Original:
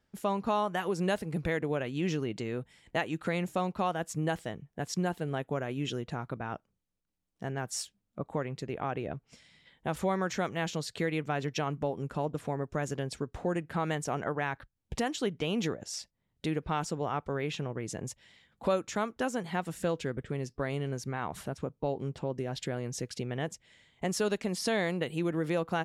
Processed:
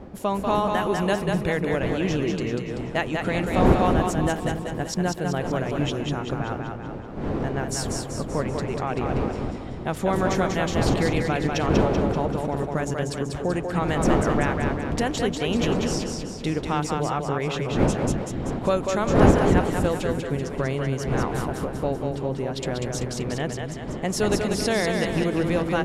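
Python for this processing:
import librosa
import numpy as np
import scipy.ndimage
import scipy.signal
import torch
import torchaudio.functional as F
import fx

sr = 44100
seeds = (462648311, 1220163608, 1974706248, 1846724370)

y = fx.dmg_wind(x, sr, seeds[0], corner_hz=390.0, level_db=-35.0)
y = fx.echo_split(y, sr, split_hz=360.0, low_ms=274, high_ms=192, feedback_pct=52, wet_db=-4.0)
y = F.gain(torch.from_numpy(y), 5.5).numpy()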